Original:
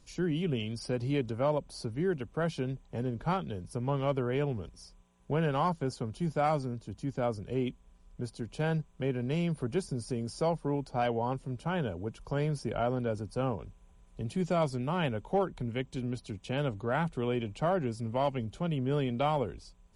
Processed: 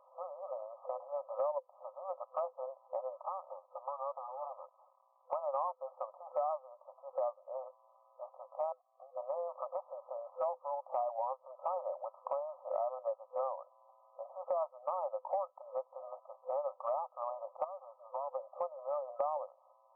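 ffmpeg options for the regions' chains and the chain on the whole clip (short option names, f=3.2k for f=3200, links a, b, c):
-filter_complex "[0:a]asettb=1/sr,asplit=3[a][b][c];[a]atrim=end=3.184[d];[b]atrim=start=3.18:end=5.33,asetpts=PTS-STARTPTS,afade=t=in:d=0.004:c=qsin,afade=t=out:st=2.146:d=0.004:c=qsin,aeval=exprs='if(lt(val(0),0),0.251*val(0),val(0))':c=same,highpass=f=860:p=1,acompressor=threshold=-42dB:ratio=6:attack=3.2:release=140:knee=1:detection=peak[e];[c]atrim=start=5.326[f];[d][e]acrossfade=d=0.004:c1=hsin:c2=qsin[g];[g][f]acrossfade=d=0.004:c1=qsin:c2=hsin,asettb=1/sr,asplit=3[h][i][j];[h]atrim=end=8.724[k];[i]atrim=start=8.72:end=9.17,asetpts=PTS-STARTPTS,afade=t=in:d=0.004:c=qsin,afade=t=out:st=0.446:d=0.004:c=qsin,acompressor=threshold=-43dB:ratio=8:attack=3.2:release=140:knee=1:detection=peak,acrusher=bits=4:mode=log:mix=0:aa=0.000001,asplit=3[l][m][n];[l]bandpass=f=730:t=q:w=8,volume=0dB[o];[m]bandpass=f=1.09k:t=q:w=8,volume=-6dB[p];[n]bandpass=f=2.44k:t=q:w=8,volume=-9dB[q];[o][p][q]amix=inputs=3:normalize=0[r];[j]atrim=start=9.166[s];[k][r]acrossfade=d=0.004:c1=hsin:c2=qsin[t];[t][s]acrossfade=d=0.004:c1=qsin:c2=hsin,asettb=1/sr,asplit=3[u][v][w];[u]atrim=end=17.644[x];[v]atrim=start=17.64:end=18.32,asetpts=PTS-STARTPTS,afade=t=in:d=0.004:c=qsin,afade=t=out:st=0.676:d=0.004:c=qsin,highpass=f=1.4k:p=1,acompressor=threshold=-42dB:ratio=16:attack=3.2:release=140:knee=1:detection=peak[y];[w]atrim=start=18.316[z];[x][y]acrossfade=d=0.004:c1=hsin:c2=qsin[aa];[aa][z]acrossfade=d=0.004:c1=qsin:c2=hsin,afftfilt=real='re*between(b*sr/4096,510,1300)':imag='im*between(b*sr/4096,510,1300)':win_size=4096:overlap=0.75,acompressor=threshold=-46dB:ratio=5,volume=11.5dB"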